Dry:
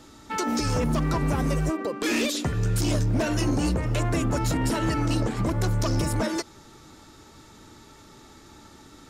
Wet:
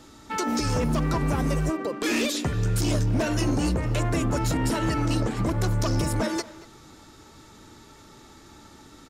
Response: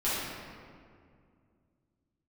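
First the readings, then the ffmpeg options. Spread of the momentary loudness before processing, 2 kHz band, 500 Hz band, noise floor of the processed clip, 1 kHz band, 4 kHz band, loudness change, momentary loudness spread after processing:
3 LU, 0.0 dB, 0.0 dB, −50 dBFS, 0.0 dB, 0.0 dB, 0.0 dB, 3 LU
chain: -filter_complex "[0:a]asplit=2[link_01][link_02];[link_02]adelay=230,highpass=300,lowpass=3400,asoftclip=type=hard:threshold=-28.5dB,volume=-14dB[link_03];[link_01][link_03]amix=inputs=2:normalize=0"

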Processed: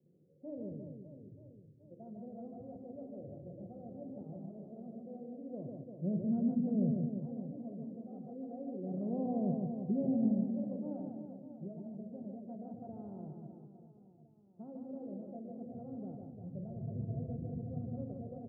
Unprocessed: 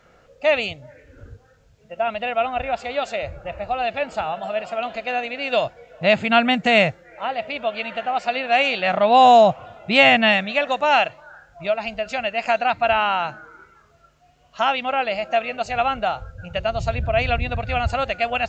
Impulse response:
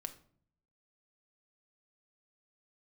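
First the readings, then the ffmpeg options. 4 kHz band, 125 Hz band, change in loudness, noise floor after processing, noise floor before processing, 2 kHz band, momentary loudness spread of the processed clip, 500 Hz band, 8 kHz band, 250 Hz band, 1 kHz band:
below −40 dB, −8.5 dB, −19.5 dB, −63 dBFS, −55 dBFS, below −40 dB, 17 LU, −24.0 dB, can't be measured, −6.0 dB, −35.0 dB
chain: -filter_complex "[0:a]asuperpass=centerf=210:order=8:qfactor=0.72,aecho=1:1:150|345|598.5|928|1356:0.631|0.398|0.251|0.158|0.1[link_01];[1:a]atrim=start_sample=2205[link_02];[link_01][link_02]afir=irnorm=-1:irlink=0,volume=-5.5dB"

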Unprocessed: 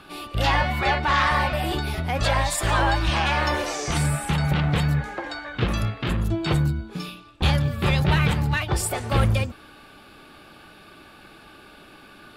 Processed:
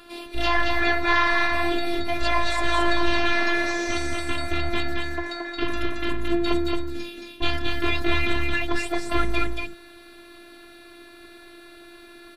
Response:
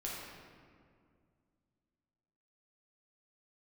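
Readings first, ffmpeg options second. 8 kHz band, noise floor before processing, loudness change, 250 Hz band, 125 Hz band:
−8.0 dB, −49 dBFS, −1.5 dB, +0.5 dB, −13.5 dB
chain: -filter_complex "[0:a]acrossover=split=5400[link_01][link_02];[link_02]acompressor=threshold=-52dB:ratio=4:attack=1:release=60[link_03];[link_01][link_03]amix=inputs=2:normalize=0,afftfilt=real='hypot(re,im)*cos(PI*b)':imag='0':win_size=512:overlap=0.75,asplit=2[link_04][link_05];[link_05]aecho=0:1:223:0.668[link_06];[link_04][link_06]amix=inputs=2:normalize=0,volume=3.5dB"

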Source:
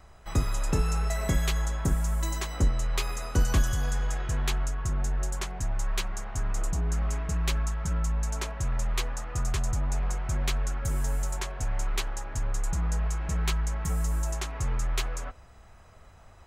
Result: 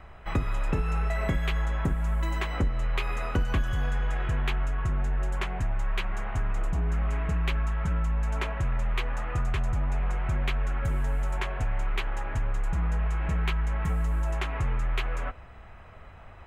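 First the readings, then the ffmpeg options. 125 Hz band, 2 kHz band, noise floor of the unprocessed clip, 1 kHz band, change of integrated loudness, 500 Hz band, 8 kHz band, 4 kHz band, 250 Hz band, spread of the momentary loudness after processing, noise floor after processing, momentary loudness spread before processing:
+0.5 dB, +3.0 dB, −52 dBFS, +2.5 dB, +0.5 dB, +1.5 dB, −15.0 dB, −3.0 dB, +1.0 dB, 4 LU, −47 dBFS, 6 LU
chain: -af "highshelf=frequency=3900:width_type=q:width=1.5:gain=-13.5,acompressor=threshold=-30dB:ratio=3,volume=5dB"

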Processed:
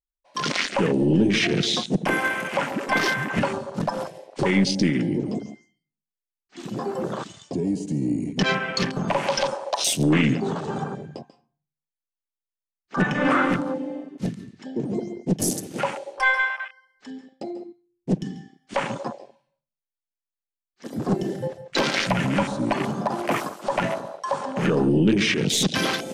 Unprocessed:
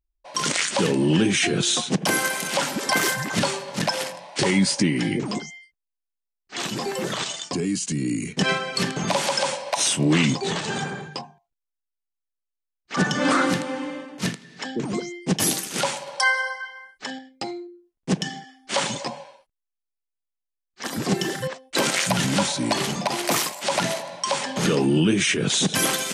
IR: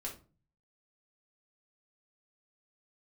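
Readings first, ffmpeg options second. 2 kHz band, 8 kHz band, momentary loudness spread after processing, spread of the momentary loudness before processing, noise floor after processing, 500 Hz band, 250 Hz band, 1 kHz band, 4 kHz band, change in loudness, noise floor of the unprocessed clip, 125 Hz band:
0.0 dB, −7.0 dB, 15 LU, 13 LU, below −85 dBFS, +0.5 dB, +1.0 dB, 0.0 dB, −3.5 dB, −0.5 dB, −84 dBFS, +0.5 dB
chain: -filter_complex "[0:a]asplit=2[link_01][link_02];[1:a]atrim=start_sample=2205,adelay=139[link_03];[link_02][link_03]afir=irnorm=-1:irlink=0,volume=-10dB[link_04];[link_01][link_04]amix=inputs=2:normalize=0,aeval=exprs='0.447*(cos(1*acos(clip(val(0)/0.447,-1,1)))-cos(1*PI/2))+0.0282*(cos(4*acos(clip(val(0)/0.447,-1,1)))-cos(4*PI/2))+0.00501*(cos(5*acos(clip(val(0)/0.447,-1,1)))-cos(5*PI/2))+0.00447*(cos(6*acos(clip(val(0)/0.447,-1,1)))-cos(6*PI/2))':channel_layout=same,afwtdn=0.0447"

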